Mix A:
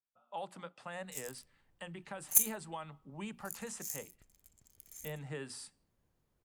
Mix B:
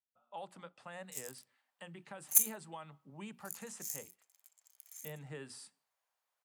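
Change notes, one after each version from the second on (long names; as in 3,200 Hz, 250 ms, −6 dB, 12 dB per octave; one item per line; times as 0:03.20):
speech −4.0 dB
background: add inverse Chebyshev high-pass filter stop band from 270 Hz, stop band 50 dB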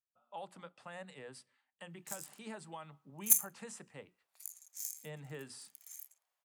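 background: entry +0.95 s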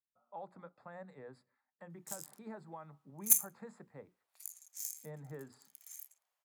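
speech: add moving average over 15 samples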